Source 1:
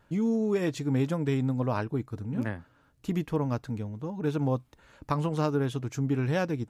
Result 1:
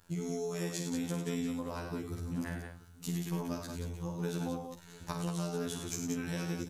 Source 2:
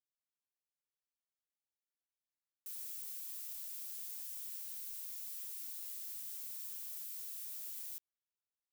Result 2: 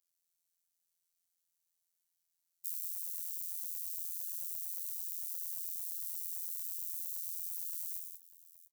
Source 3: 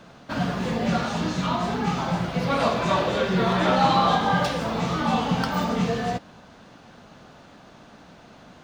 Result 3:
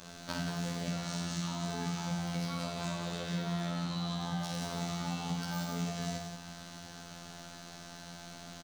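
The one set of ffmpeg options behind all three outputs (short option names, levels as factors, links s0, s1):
-filter_complex "[0:a]acrossover=split=280[s0][s1];[s1]acompressor=threshold=0.0447:ratio=6[s2];[s0][s2]amix=inputs=2:normalize=0,bass=f=250:g=2,treble=f=4000:g=15,afftfilt=real='hypot(re,im)*cos(PI*b)':imag='0':win_size=2048:overlap=0.75,equalizer=f=290:t=o:w=1.2:g=-4,acompressor=threshold=0.0224:ratio=20,asplit=2[s3][s4];[s4]aecho=0:1:51|69|96|105|180|684:0.447|0.133|0.355|0.266|0.501|0.141[s5];[s3][s5]amix=inputs=2:normalize=0"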